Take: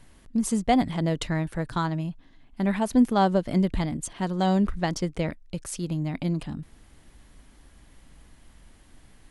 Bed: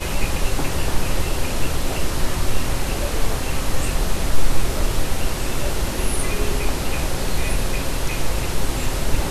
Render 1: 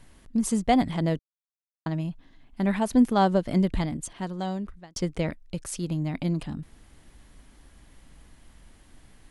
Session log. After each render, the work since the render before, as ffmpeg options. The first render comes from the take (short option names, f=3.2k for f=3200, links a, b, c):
-filter_complex "[0:a]asplit=4[a][b][c][d];[a]atrim=end=1.19,asetpts=PTS-STARTPTS,afade=t=out:st=1.186:d=0.004:c=hsin[e];[b]atrim=start=1.19:end=1.86,asetpts=PTS-STARTPTS,volume=0[f];[c]atrim=start=1.86:end=4.96,asetpts=PTS-STARTPTS,afade=t=in:d=0.004:c=hsin,afade=t=out:st=1.91:d=1.19[g];[d]atrim=start=4.96,asetpts=PTS-STARTPTS,afade=t=in:d=0.004:c=hsin[h];[e][f][g][h]concat=n=4:v=0:a=1"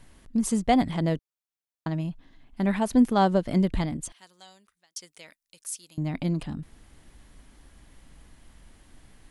-filter_complex "[0:a]asettb=1/sr,asplit=3[a][b][c];[a]atrim=end=4.124[d];[b]atrim=start=4.12:end=5.98,asetpts=PTS-STARTPTS,afade=t=in:d=0.004:c=qsin,afade=t=out:st=1.856:d=0.004:c=qsin,aderivative[e];[c]atrim=start=5.976[f];[d][e]acrossfade=d=0.004:c1=hsin:c2=qsin[g];[g][f]acrossfade=d=0.004:c1=qsin:c2=hsin"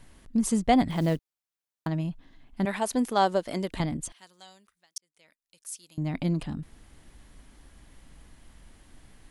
-filter_complex "[0:a]asettb=1/sr,asplit=3[a][b][c];[a]atrim=end=0.904[d];[b]atrim=start=0.9:end=1.87,asetpts=PTS-STARTPTS,afade=t=in:d=0.004:c=qsin,afade=t=out:st=0.966:d=0.004:c=qsin,acrusher=bits=7:mode=log:mix=0:aa=0.000001[e];[c]atrim=start=1.866[f];[d][e]acrossfade=d=0.004:c1=hsin:c2=qsin[g];[g][f]acrossfade=d=0.004:c1=qsin:c2=hsin,asettb=1/sr,asplit=3[h][i][j];[h]atrim=end=2.654[k];[i]atrim=start=2.65:end=3.8,asetpts=PTS-STARTPTS,afade=t=in:d=0.004:c=qsin,afade=t=out:st=1.146:d=0.004:c=qsin,bass=f=250:g=-15,treble=f=4k:g=5[l];[j]atrim=start=3.796[m];[k][l]acrossfade=d=0.004:c1=hsin:c2=qsin[n];[n][m]acrossfade=d=0.004:c1=qsin:c2=hsin,asplit=2[o][p];[o]atrim=end=4.98,asetpts=PTS-STARTPTS,afade=t=out:st=4.976:d=0.004:c=hsin[q];[p]atrim=start=4.98,asetpts=PTS-STARTPTS,afade=t=in:d=1.18[r];[q][r]concat=n=2:v=0:a=1"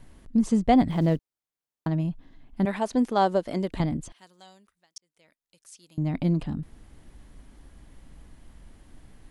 -filter_complex "[0:a]acrossover=split=7600[a][b];[b]acompressor=threshold=-57dB:ratio=4:attack=1:release=60[c];[a][c]amix=inputs=2:normalize=0,tiltshelf=f=970:g=3.5"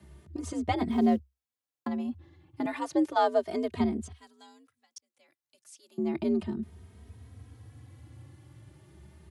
-filter_complex "[0:a]afreqshift=65,asplit=2[a][b];[b]adelay=2.9,afreqshift=0.33[c];[a][c]amix=inputs=2:normalize=1"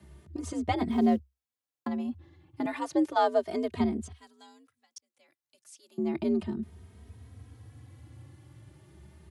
-af anull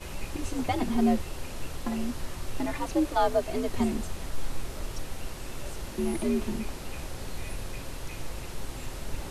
-filter_complex "[1:a]volume=-15dB[a];[0:a][a]amix=inputs=2:normalize=0"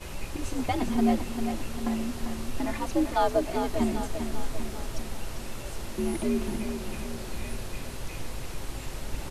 -af "aecho=1:1:396|792|1188|1584|1980|2376:0.398|0.215|0.116|0.0627|0.0339|0.0183"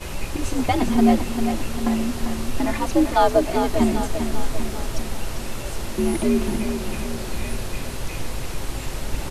-af "volume=7.5dB"